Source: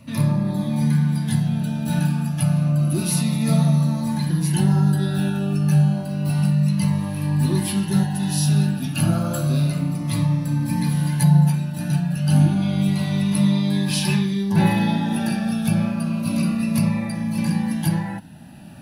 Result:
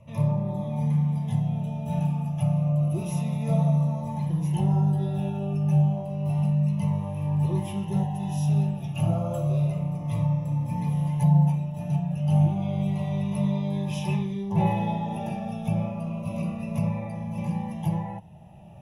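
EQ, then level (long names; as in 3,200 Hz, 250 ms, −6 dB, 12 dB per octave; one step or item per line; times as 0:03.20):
moving average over 10 samples
phaser with its sweep stopped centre 640 Hz, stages 4
0.0 dB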